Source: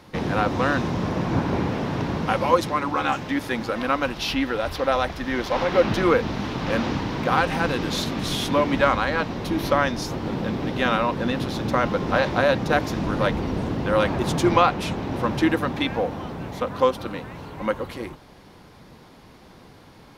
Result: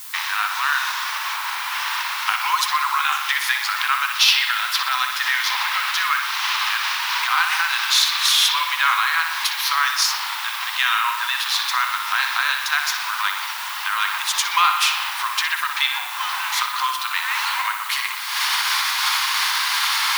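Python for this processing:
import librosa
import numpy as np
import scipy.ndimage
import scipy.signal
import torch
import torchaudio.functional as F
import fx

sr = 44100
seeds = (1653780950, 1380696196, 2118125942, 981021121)

p1 = fx.recorder_agc(x, sr, target_db=-11.5, rise_db_per_s=54.0, max_gain_db=30)
p2 = scipy.signal.sosfilt(scipy.signal.butter(8, 950.0, 'highpass', fs=sr, output='sos'), p1)
p3 = fx.dmg_noise_colour(p2, sr, seeds[0], colour='blue', level_db=-45.0)
p4 = fx.tilt_shelf(p3, sr, db=-5.0, hz=1400.0)
p5 = p4 + fx.echo_bbd(p4, sr, ms=61, stages=2048, feedback_pct=67, wet_db=-7, dry=0)
y = F.gain(torch.from_numpy(p5), 3.5).numpy()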